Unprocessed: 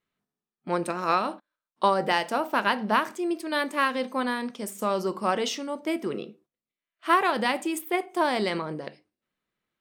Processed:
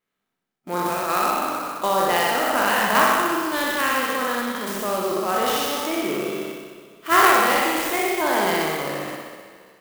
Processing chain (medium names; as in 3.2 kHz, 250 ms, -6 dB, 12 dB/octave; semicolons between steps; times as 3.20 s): spectral sustain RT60 1.87 s; dynamic bell 1 kHz, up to -4 dB, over -36 dBFS, Q 5.3; in parallel at -2 dB: level held to a coarse grid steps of 19 dB; on the sum: peaking EQ 61 Hz -10.5 dB 2.5 oct; on a send: flutter echo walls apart 10.7 m, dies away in 1.1 s; on the sum: sampling jitter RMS 0.032 ms; trim -2 dB